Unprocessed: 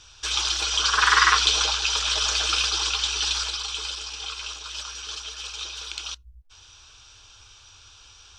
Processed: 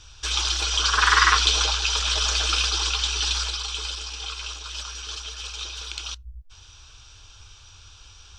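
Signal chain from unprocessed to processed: low shelf 170 Hz +9.5 dB

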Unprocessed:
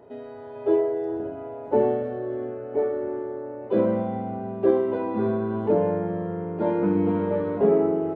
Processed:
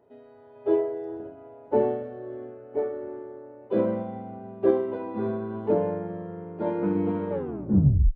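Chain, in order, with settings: tape stop at the end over 0.84 s; upward expander 1.5:1, over -38 dBFS

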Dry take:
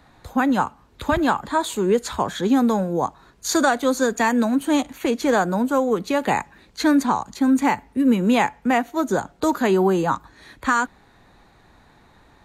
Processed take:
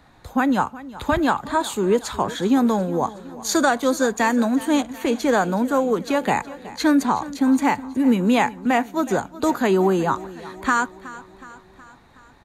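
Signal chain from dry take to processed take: feedback echo 0.369 s, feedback 57%, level -17.5 dB

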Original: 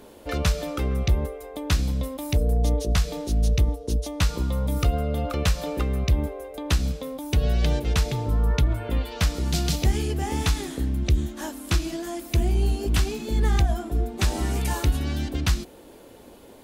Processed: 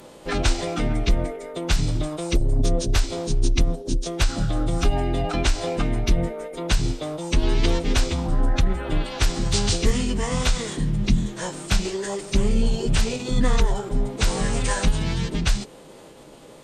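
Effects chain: high shelf 12000 Hz +6.5 dB; formant-preserving pitch shift -9.5 st; low shelf 480 Hz -3 dB; gain +5.5 dB

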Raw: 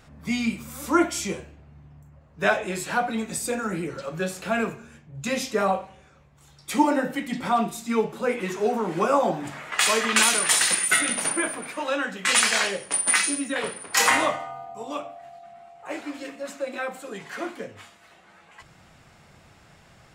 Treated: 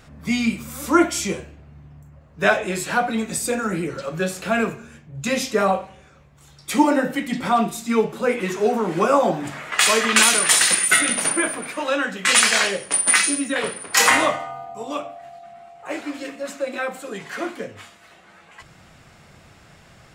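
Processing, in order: bell 870 Hz -2.5 dB 0.42 oct; gain +4.5 dB

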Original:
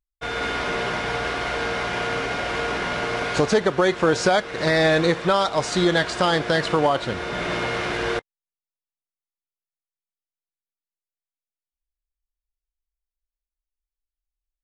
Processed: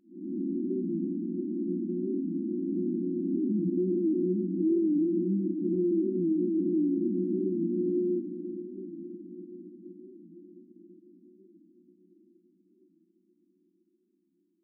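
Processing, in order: time blur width 0.225 s; in parallel at +1.5 dB: vocal rider; on the sum: FFT band-pass 180–370 Hz; limiter -22 dBFS, peak gain reduction 9 dB; diffused feedback echo 0.581 s, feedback 65%, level -11 dB; record warp 45 rpm, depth 100 cents

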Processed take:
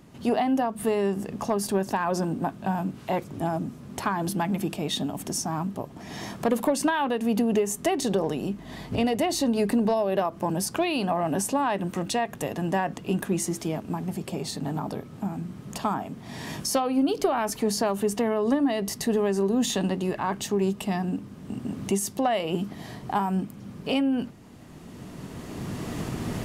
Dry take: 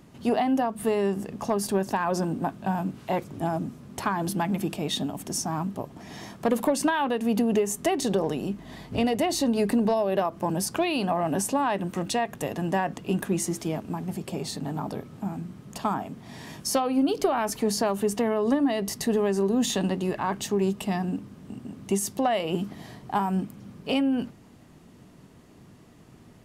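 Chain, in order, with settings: recorder AGC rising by 12 dB/s

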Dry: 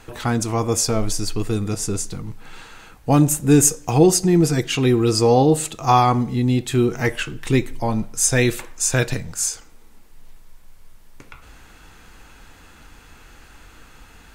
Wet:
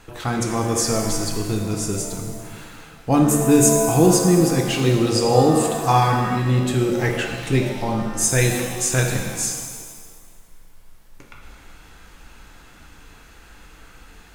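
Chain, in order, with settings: 6.55–7.61 crackle 26/s -27 dBFS; shimmer reverb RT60 1.6 s, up +7 st, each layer -8 dB, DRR 2 dB; gain -2.5 dB

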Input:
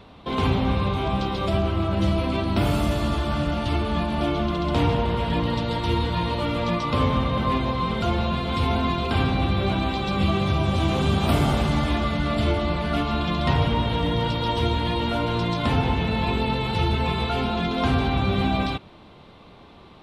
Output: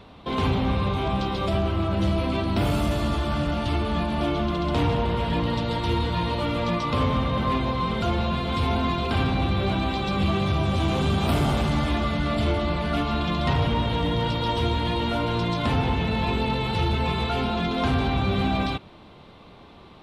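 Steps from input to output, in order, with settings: soft clip -14 dBFS, distortion -21 dB

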